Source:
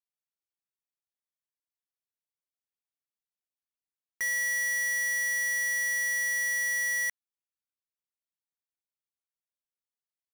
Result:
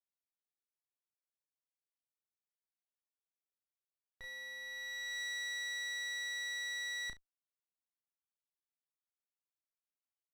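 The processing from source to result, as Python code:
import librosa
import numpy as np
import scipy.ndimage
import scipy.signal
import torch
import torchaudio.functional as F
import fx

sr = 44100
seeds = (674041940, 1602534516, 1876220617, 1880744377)

p1 = scipy.signal.sosfilt(scipy.signal.butter(2, 44.0, 'highpass', fs=sr, output='sos'), x)
p2 = p1 + fx.room_early_taps(p1, sr, ms=(33, 70), db=(-6.0, -17.0), dry=0)
p3 = fx.filter_sweep_bandpass(p2, sr, from_hz=520.0, to_hz=1200.0, start_s=4.59, end_s=5.2, q=0.79)
p4 = fx.running_max(p3, sr, window=9)
y = p4 * librosa.db_to_amplitude(-8.0)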